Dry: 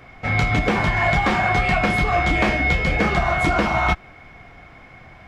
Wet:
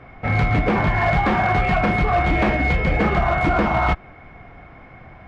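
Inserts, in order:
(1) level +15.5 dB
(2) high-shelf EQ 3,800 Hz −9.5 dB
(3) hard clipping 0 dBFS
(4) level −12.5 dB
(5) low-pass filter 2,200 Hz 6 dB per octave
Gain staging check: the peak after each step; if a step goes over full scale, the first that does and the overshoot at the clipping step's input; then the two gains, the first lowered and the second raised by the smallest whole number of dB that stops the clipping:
+9.5, +9.0, 0.0, −12.5, −12.5 dBFS
step 1, 9.0 dB
step 1 +6.5 dB, step 4 −3.5 dB

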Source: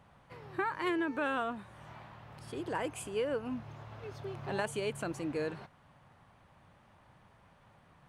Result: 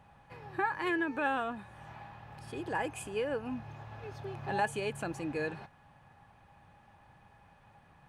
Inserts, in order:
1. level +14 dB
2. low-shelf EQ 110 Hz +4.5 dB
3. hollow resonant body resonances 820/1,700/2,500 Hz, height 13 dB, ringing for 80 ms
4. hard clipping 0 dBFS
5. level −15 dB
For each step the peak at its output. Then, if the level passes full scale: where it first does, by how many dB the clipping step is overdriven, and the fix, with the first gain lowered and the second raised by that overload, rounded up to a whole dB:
−6.0, −6.5, −3.5, −3.5, −18.5 dBFS
no step passes full scale

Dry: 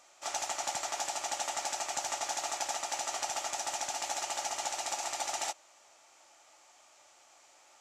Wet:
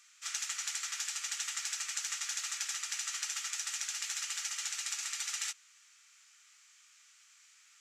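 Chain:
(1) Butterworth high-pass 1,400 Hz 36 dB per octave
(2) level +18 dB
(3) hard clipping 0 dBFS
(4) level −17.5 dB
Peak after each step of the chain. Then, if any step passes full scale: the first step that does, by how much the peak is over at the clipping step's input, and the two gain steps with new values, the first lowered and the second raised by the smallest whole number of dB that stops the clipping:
−20.0, −2.0, −2.0, −19.5 dBFS
no step passes full scale

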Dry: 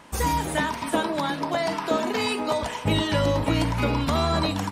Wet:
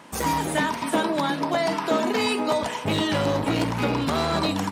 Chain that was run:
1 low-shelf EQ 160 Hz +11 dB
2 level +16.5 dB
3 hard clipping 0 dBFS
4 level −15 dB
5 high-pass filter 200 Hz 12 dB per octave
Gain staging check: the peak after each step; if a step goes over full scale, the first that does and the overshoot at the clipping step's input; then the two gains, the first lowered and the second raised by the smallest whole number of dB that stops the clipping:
−7.0, +9.5, 0.0, −15.0, −10.0 dBFS
step 2, 9.5 dB
step 2 +6.5 dB, step 4 −5 dB

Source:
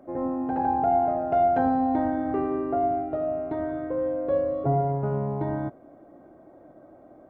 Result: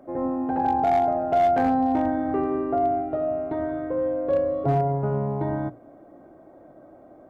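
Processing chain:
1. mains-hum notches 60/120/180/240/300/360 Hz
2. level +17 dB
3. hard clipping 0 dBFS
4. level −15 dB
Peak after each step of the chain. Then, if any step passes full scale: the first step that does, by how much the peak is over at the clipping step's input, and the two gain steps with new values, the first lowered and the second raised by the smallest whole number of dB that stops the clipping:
−12.0, +5.0, 0.0, −15.0 dBFS
step 2, 5.0 dB
step 2 +12 dB, step 4 −10 dB

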